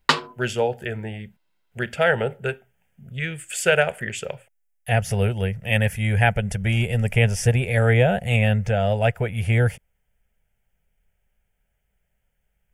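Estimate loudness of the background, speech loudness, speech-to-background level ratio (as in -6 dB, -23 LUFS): -23.5 LUFS, -22.0 LUFS, 1.5 dB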